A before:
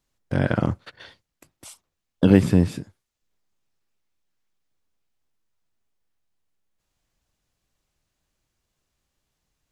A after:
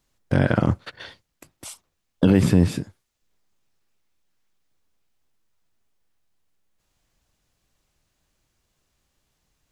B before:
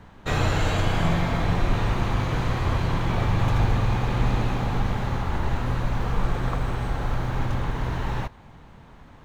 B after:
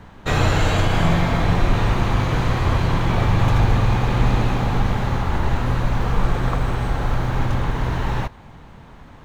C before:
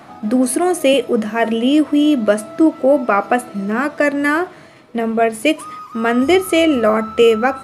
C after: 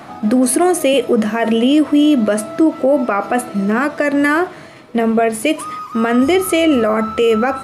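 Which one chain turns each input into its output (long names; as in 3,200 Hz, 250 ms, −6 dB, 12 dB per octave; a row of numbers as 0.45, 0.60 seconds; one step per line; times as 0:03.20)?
brickwall limiter −10.5 dBFS
level +5 dB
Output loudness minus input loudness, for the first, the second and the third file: +0.5, +5.0, +0.5 LU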